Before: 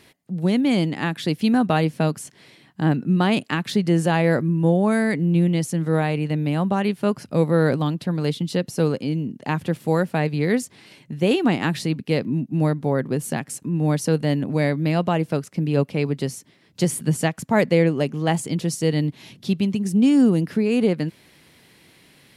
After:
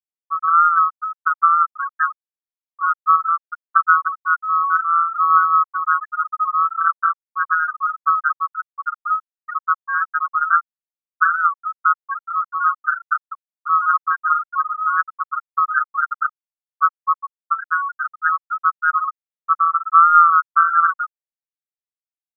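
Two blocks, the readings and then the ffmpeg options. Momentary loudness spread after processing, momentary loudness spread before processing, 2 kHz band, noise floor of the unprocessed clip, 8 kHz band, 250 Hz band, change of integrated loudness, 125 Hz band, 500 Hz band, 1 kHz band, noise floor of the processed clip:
10 LU, 7 LU, +9.0 dB, -54 dBFS, under -40 dB, under -40 dB, +3.5 dB, under -40 dB, under -40 dB, +15.0 dB, under -85 dBFS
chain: -filter_complex "[0:a]afftfilt=real='real(if(lt(b,960),b+48*(1-2*mod(floor(b/48),2)),b),0)':imag='imag(if(lt(b,960),b+48*(1-2*mod(floor(b/48),2)),b),0)':win_size=2048:overlap=0.75,alimiter=limit=0.299:level=0:latency=1:release=463,adynamicequalizer=threshold=0.00126:dfrequency=210:dqfactor=5:tfrequency=210:tqfactor=5:attack=5:release=100:ratio=0.375:range=4:mode=cutabove:tftype=bell,aeval=exprs='val(0)*sin(2*PI*82*n/s)':c=same,aphaser=in_gain=1:out_gain=1:delay=1:decay=0.32:speed=1.6:type=sinusoidal,acompressor=mode=upward:threshold=0.0447:ratio=2.5,equalizer=f=1400:t=o:w=1.5:g=13,acrossover=split=700|2100[s0][s1][s2];[s0]acompressor=threshold=0.00794:ratio=4[s3];[s2]acompressor=threshold=0.0316:ratio=4[s4];[s3][s1][s4]amix=inputs=3:normalize=0,afftfilt=real='re*gte(hypot(re,im),1.41)':imag='im*gte(hypot(re,im),1.41)':win_size=1024:overlap=0.75,lowpass=f=4200:w=0.5412,lowpass=f=4200:w=1.3066,volume=0.668"

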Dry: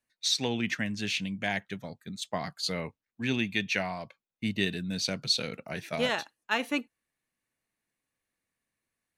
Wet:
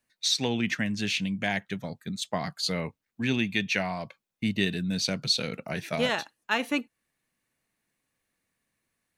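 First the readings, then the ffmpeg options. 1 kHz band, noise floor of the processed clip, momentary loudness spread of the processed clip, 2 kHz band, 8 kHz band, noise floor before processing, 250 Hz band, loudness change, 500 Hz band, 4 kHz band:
+2.0 dB, -83 dBFS, 9 LU, +2.0 dB, +2.0 dB, under -85 dBFS, +3.5 dB, +2.0 dB, +2.0 dB, +2.0 dB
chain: -filter_complex "[0:a]equalizer=f=170:w=1.5:g=2.5,asplit=2[s0][s1];[s1]acompressor=threshold=0.0126:ratio=6,volume=0.891[s2];[s0][s2]amix=inputs=2:normalize=0"

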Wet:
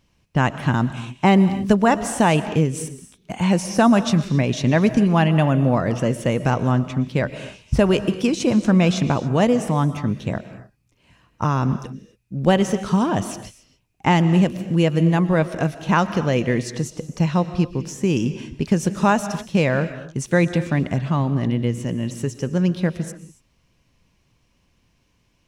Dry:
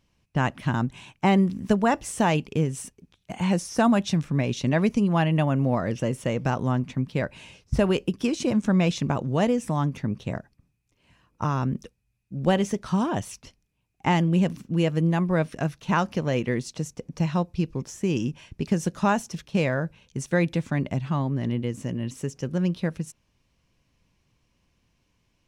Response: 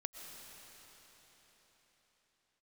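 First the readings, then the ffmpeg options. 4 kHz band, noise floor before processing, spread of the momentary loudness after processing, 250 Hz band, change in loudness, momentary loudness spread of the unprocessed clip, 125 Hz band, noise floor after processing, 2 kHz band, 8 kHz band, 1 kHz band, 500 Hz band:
+5.5 dB, -72 dBFS, 10 LU, +5.5 dB, +5.5 dB, 10 LU, +5.5 dB, -64 dBFS, +5.5 dB, +5.5 dB, +5.5 dB, +5.5 dB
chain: -filter_complex "[0:a]asplit=2[s0][s1];[1:a]atrim=start_sample=2205,afade=t=out:st=0.34:d=0.01,atrim=end_sample=15435[s2];[s1][s2]afir=irnorm=-1:irlink=0,volume=1.58[s3];[s0][s3]amix=inputs=2:normalize=0,volume=0.891"

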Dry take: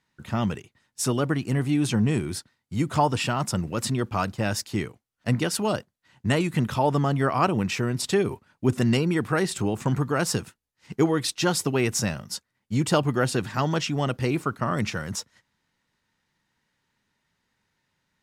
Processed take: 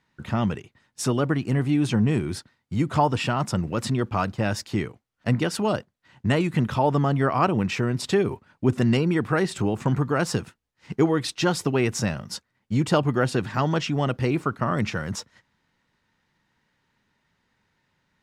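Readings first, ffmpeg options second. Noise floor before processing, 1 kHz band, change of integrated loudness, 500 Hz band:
-79 dBFS, +1.0 dB, +1.0 dB, +1.5 dB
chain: -filter_complex "[0:a]lowpass=f=3400:p=1,asplit=2[s0][s1];[s1]acompressor=threshold=0.02:ratio=6,volume=0.794[s2];[s0][s2]amix=inputs=2:normalize=0"

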